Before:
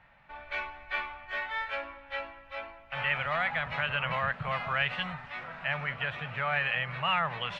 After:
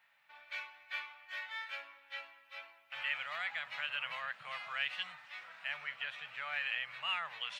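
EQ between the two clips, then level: differentiator; +3.5 dB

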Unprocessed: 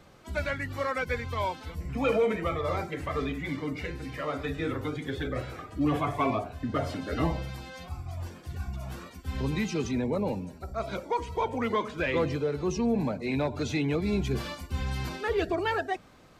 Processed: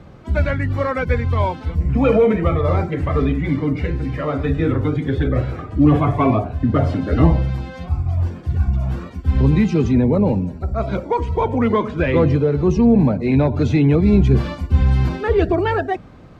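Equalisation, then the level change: HPF 110 Hz 6 dB/oct; RIAA curve playback; +8.0 dB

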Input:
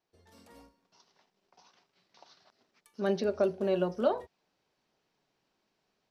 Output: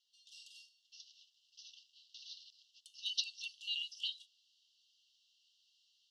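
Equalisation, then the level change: brick-wall FIR high-pass 2700 Hz; air absorption 100 m; +14.5 dB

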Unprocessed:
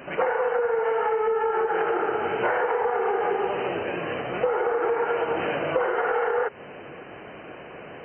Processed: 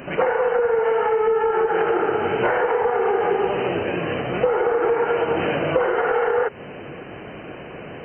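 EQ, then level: low shelf 410 Hz +10.5 dB; high shelf 2800 Hz +9 dB; 0.0 dB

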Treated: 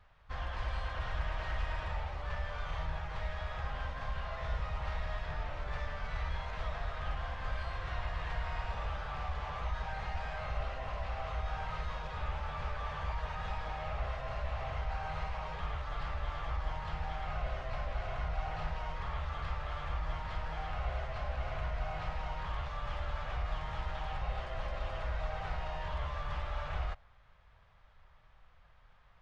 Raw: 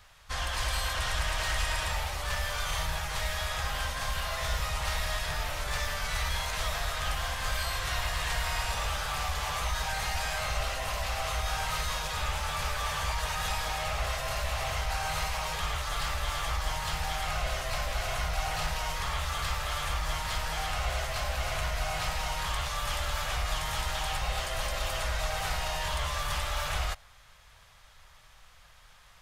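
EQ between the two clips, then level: tape spacing loss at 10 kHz 38 dB; -3.0 dB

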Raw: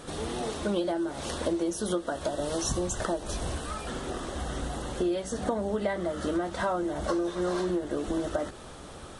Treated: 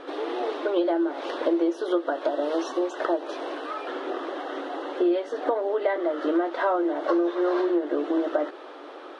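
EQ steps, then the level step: brick-wall FIR high-pass 270 Hz; air absorption 320 m; +6.5 dB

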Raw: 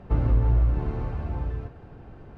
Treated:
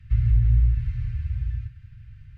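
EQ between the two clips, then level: elliptic band-stop 120–1900 Hz, stop band 60 dB; bell 93 Hz +4.5 dB 1.9 oct; 0.0 dB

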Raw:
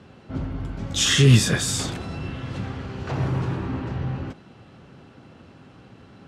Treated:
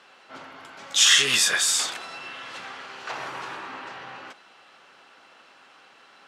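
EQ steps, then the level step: HPF 980 Hz 12 dB/oct; +4.5 dB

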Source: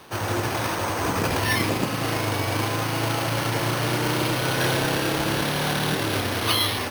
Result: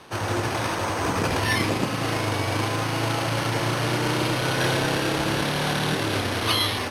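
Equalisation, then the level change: Bessel low-pass 10000 Hz, order 4; 0.0 dB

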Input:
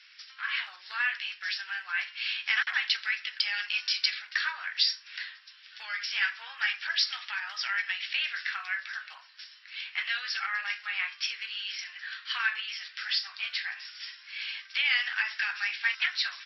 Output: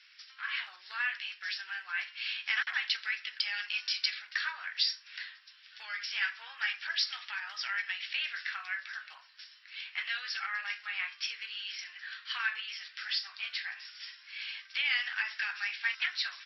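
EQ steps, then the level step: tone controls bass +15 dB, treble 0 dB; -4.0 dB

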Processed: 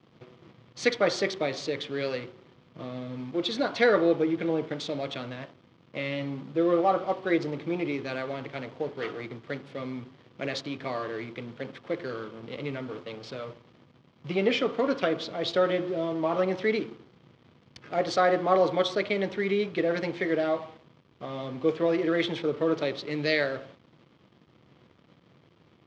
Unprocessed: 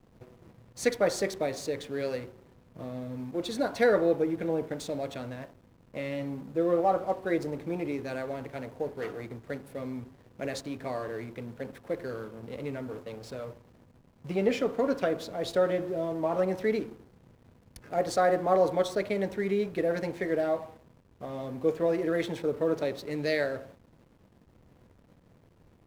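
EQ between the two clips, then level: speaker cabinet 120–5000 Hz, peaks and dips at 140 Hz +5 dB, 340 Hz +4 dB, 1200 Hz +6 dB, 2200 Hz +4 dB, 3200 Hz +7 dB; high shelf 3300 Hz +9.5 dB; 0.0 dB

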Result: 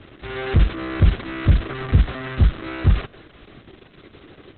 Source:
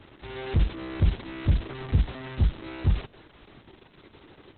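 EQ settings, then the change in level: dynamic EQ 1300 Hz, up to +6 dB, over -52 dBFS, Q 0.87; air absorption 71 m; bell 900 Hz -9.5 dB 0.24 oct; +7.0 dB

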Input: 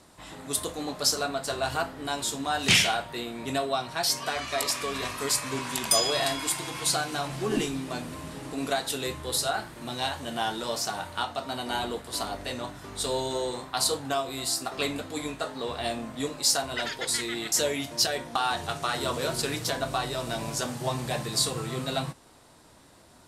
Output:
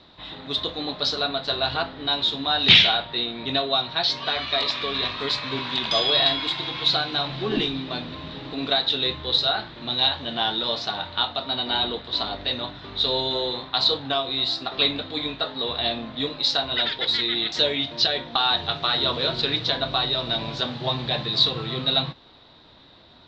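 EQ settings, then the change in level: synth low-pass 3800 Hz, resonance Q 7.9; air absorption 180 m; +2.5 dB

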